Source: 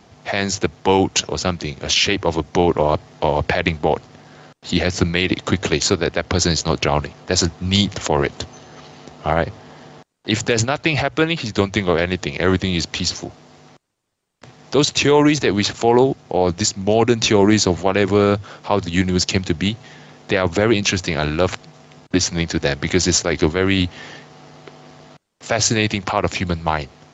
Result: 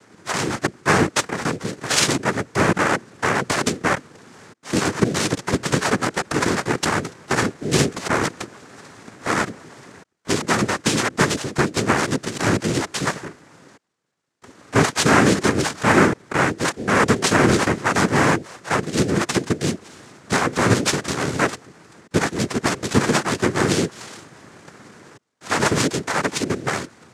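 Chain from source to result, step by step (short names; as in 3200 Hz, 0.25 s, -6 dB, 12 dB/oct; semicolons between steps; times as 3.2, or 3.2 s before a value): careless resampling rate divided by 8×, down none, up hold; noise vocoder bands 3; gain -1.5 dB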